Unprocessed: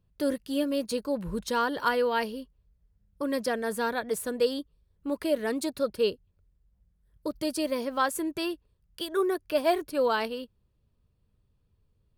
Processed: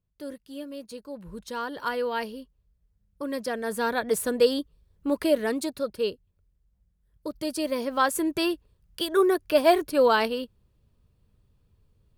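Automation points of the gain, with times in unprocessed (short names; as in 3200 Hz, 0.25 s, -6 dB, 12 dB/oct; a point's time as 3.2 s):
1.02 s -10 dB
2.08 s -2 dB
3.45 s -2 dB
4.1 s +5 dB
5.26 s +5 dB
5.85 s -1.5 dB
7.28 s -1.5 dB
8.37 s +5.5 dB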